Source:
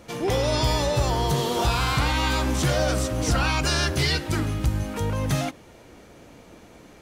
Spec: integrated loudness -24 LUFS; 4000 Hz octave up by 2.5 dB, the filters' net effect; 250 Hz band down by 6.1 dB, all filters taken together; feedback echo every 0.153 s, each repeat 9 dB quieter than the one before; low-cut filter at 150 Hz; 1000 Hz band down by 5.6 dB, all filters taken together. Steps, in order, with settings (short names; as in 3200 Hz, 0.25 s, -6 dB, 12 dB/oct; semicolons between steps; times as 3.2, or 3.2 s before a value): HPF 150 Hz; bell 250 Hz -7 dB; bell 1000 Hz -7 dB; bell 4000 Hz +3.5 dB; feedback echo 0.153 s, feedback 35%, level -9 dB; gain +1.5 dB